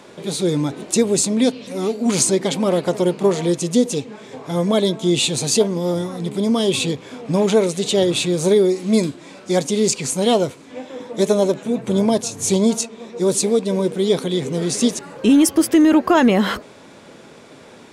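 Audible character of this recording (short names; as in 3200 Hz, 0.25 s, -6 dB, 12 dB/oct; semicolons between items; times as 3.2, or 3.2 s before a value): noise floor -43 dBFS; spectral tilt -4.5 dB/oct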